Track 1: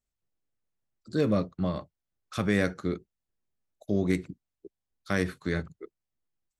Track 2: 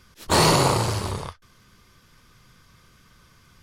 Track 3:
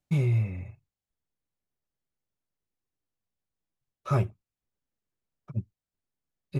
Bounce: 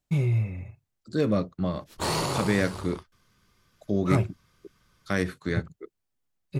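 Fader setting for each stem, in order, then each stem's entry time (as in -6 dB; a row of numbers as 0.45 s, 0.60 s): +1.0 dB, -10.0 dB, +0.5 dB; 0.00 s, 1.70 s, 0.00 s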